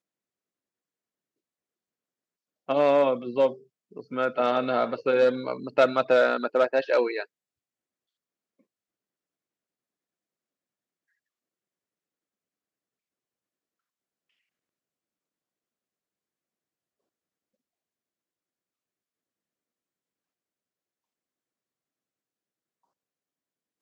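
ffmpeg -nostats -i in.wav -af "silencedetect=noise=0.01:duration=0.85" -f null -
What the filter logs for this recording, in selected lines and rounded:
silence_start: 0.00
silence_end: 2.69 | silence_duration: 2.69
silence_start: 7.24
silence_end: 23.82 | silence_duration: 16.57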